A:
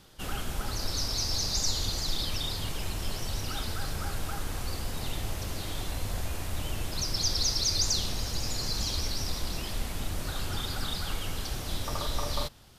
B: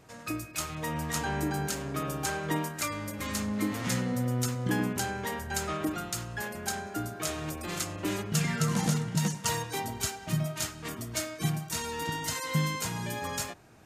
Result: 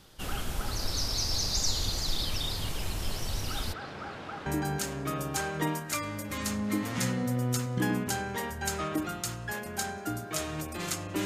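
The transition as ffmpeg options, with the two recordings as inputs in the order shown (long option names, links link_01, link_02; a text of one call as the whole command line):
ffmpeg -i cue0.wav -i cue1.wav -filter_complex "[0:a]asplit=3[link_01][link_02][link_03];[link_01]afade=type=out:start_time=3.72:duration=0.02[link_04];[link_02]highpass=200,lowpass=2600,afade=type=in:start_time=3.72:duration=0.02,afade=type=out:start_time=4.46:duration=0.02[link_05];[link_03]afade=type=in:start_time=4.46:duration=0.02[link_06];[link_04][link_05][link_06]amix=inputs=3:normalize=0,apad=whole_dur=11.25,atrim=end=11.25,atrim=end=4.462[link_07];[1:a]atrim=start=1.348:end=8.14[link_08];[link_07][link_08]acrossfade=duration=0.004:curve1=hsin:curve2=hsin" out.wav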